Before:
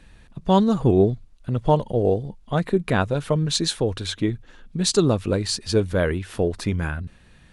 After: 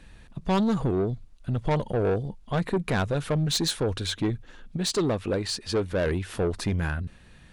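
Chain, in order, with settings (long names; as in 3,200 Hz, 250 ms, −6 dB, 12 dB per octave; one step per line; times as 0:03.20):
0:00.81–0:01.71: downward compressor 6 to 1, threshold −18 dBFS, peak gain reduction 6.5 dB
0:04.77–0:06.06: bass and treble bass −6 dB, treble −6 dB
soft clipping −19.5 dBFS, distortion −10 dB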